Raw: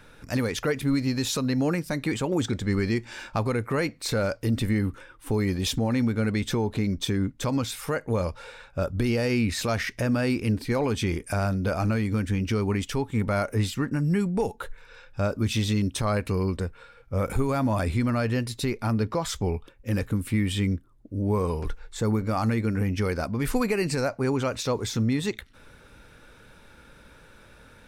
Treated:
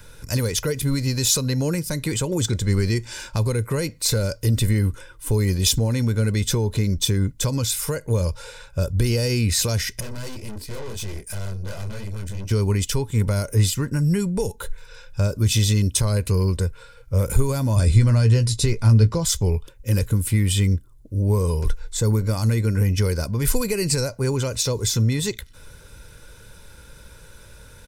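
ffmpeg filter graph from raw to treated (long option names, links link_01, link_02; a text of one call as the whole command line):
ffmpeg -i in.wav -filter_complex "[0:a]asettb=1/sr,asplit=3[link_01][link_02][link_03];[link_01]atrim=end=10.004[link_04];[link_02]atrim=start=10:end=12.51,asetpts=PTS-STARTPTS,afade=type=in:duration=0.004:curve=qsin,afade=type=out:start_time=2.506:duration=0.004:curve=qsin,flanger=delay=19:depth=4.9:speed=2.8,aeval=exprs='(tanh(56.2*val(0)+0.65)-tanh(0.65))/56.2':channel_layout=same[link_05];[link_03]atrim=start=12.506[link_06];[link_04][link_05]acrossfade=duration=0.004:curve1=hsin:curve2=qsin[link_07];[link_07][link_06]acrossfade=duration=0.004:curve1=qsin:curve2=hsin,asettb=1/sr,asplit=3[link_08][link_09][link_10];[link_08]atrim=end=17.764[link_11];[link_09]atrim=start=17.76:end=19.25,asetpts=PTS-STARTPTS,afade=type=in:duration=0.004:curve=qsin,afade=type=out:start_time=1.486:duration=0.004:curve=qsin,lowpass=frequency=9700:width=0.5412,lowpass=frequency=9700:width=1.3066,lowshelf=frequency=120:gain=7,asplit=2[link_12][link_13];[link_13]adelay=18,volume=-9dB[link_14];[link_12][link_14]amix=inputs=2:normalize=0,atrim=end_sample=65709[link_15];[link_10]atrim=start=19.246[link_16];[link_11][link_15]acrossfade=duration=0.004:curve1=hsin:curve2=qsin[link_17];[link_17][link_16]acrossfade=duration=0.004:curve1=qsin:curve2=hsin,aecho=1:1:2:0.48,acrossover=split=490|3000[link_18][link_19][link_20];[link_19]acompressor=threshold=-32dB:ratio=6[link_21];[link_18][link_21][link_20]amix=inputs=3:normalize=0,bass=frequency=250:gain=7,treble=frequency=4000:gain=13" out.wav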